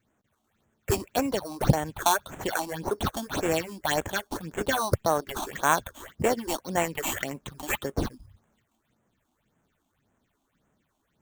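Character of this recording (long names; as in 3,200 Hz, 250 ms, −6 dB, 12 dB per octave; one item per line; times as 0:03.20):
aliases and images of a low sample rate 5,000 Hz, jitter 0%
phaser sweep stages 6, 1.8 Hz, lowest notch 120–4,600 Hz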